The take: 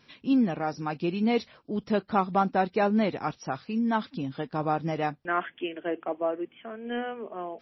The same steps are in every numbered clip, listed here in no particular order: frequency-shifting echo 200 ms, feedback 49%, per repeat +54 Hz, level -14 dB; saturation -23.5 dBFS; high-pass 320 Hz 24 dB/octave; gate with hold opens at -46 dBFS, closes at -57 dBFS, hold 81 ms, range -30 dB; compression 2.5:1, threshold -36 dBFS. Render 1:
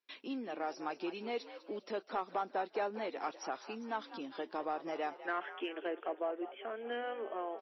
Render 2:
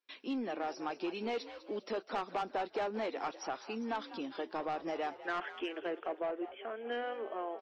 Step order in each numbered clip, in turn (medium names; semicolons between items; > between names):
gate with hold > compression > high-pass > frequency-shifting echo > saturation; high-pass > saturation > compression > frequency-shifting echo > gate with hold